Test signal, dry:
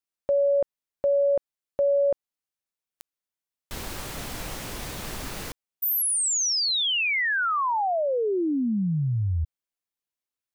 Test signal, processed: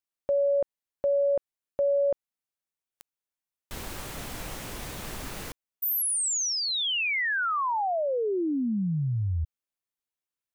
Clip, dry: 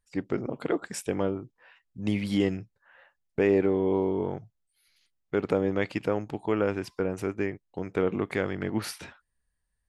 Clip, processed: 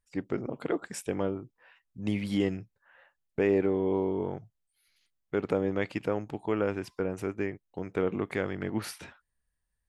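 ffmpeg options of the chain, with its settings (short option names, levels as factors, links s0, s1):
-af "equalizer=f=4700:t=o:w=0.77:g=-2,volume=0.75"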